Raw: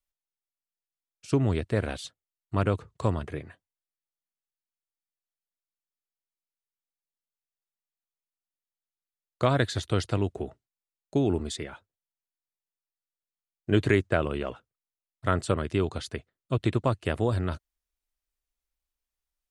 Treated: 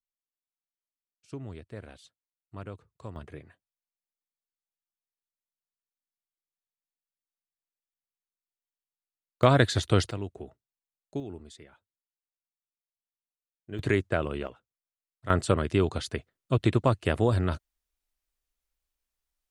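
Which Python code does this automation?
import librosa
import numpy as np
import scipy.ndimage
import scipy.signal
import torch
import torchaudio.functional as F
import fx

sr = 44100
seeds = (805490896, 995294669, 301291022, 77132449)

y = fx.gain(x, sr, db=fx.steps((0.0, -15.5), (3.16, -8.5), (9.43, 3.5), (10.11, -8.0), (11.2, -15.0), (13.79, -2.5), (14.47, -10.0), (15.3, 2.0)))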